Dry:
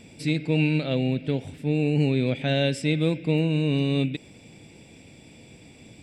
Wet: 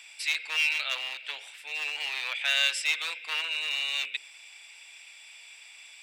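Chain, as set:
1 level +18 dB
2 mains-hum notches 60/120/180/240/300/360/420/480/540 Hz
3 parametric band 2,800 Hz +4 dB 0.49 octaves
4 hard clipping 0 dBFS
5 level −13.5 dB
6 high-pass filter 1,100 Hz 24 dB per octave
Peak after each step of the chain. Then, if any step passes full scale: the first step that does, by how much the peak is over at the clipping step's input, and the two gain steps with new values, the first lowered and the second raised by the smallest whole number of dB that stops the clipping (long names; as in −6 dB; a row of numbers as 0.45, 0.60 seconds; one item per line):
+6.0, +6.0, +7.0, 0.0, −13.5, −11.0 dBFS
step 1, 7.0 dB
step 1 +11 dB, step 5 −6.5 dB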